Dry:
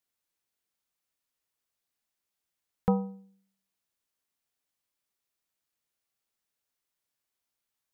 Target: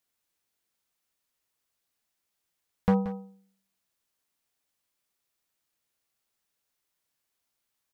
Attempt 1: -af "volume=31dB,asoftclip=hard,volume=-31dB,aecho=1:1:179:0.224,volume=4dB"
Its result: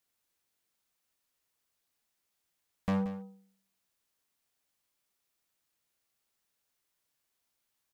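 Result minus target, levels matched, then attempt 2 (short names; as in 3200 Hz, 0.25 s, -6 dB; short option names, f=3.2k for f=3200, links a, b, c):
overloaded stage: distortion +9 dB
-af "volume=20dB,asoftclip=hard,volume=-20dB,aecho=1:1:179:0.224,volume=4dB"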